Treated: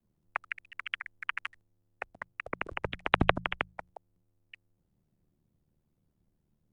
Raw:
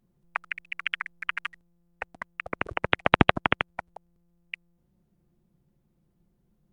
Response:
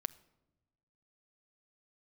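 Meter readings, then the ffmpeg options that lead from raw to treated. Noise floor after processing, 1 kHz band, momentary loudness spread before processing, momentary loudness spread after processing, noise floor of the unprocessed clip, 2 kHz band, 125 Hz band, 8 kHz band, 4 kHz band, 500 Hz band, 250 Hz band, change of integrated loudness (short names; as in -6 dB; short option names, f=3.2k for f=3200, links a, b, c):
-77 dBFS, -6.0 dB, 20 LU, 17 LU, -71 dBFS, -6.0 dB, -6.0 dB, n/a, -6.0 dB, -5.5 dB, -7.5 dB, -6.0 dB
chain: -af "aeval=exprs='val(0)*sin(2*PI*38*n/s)':c=same,bandreject=f=52.35:t=h:w=4,bandreject=f=104.7:t=h:w=4,bandreject=f=157.05:t=h:w=4,bandreject=f=209.4:t=h:w=4,afreqshift=-31,volume=-2.5dB"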